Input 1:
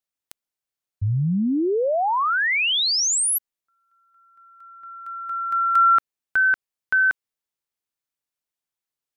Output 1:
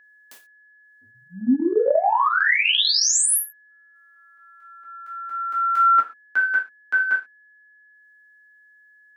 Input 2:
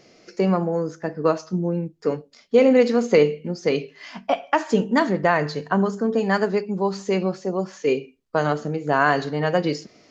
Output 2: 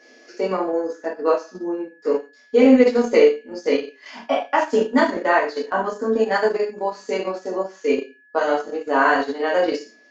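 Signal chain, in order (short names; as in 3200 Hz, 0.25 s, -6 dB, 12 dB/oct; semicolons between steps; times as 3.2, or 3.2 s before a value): elliptic high-pass 240 Hz, stop band 40 dB; non-linear reverb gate 0.16 s falling, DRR -7 dB; transient shaper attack -1 dB, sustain -8 dB; whine 1700 Hz -47 dBFS; gain -4.5 dB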